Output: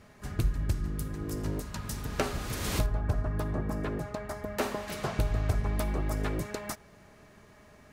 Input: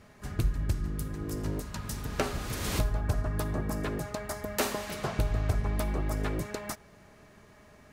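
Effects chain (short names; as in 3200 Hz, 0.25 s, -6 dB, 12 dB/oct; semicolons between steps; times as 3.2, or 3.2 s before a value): 2.86–4.88 high shelf 3200 Hz -10 dB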